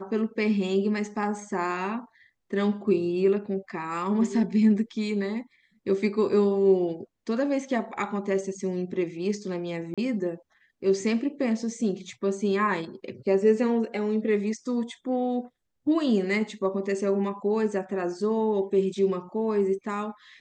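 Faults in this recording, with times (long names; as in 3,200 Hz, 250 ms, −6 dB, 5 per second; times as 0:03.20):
0:09.94–0:09.98: drop-out 36 ms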